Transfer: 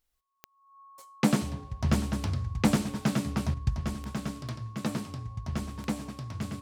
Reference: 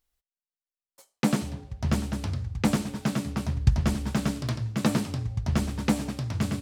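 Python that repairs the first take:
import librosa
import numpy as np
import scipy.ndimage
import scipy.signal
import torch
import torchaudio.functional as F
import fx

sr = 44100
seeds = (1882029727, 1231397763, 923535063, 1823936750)

y = fx.fix_declick_ar(x, sr, threshold=10.0)
y = fx.notch(y, sr, hz=1100.0, q=30.0)
y = fx.fix_level(y, sr, at_s=3.54, step_db=7.5)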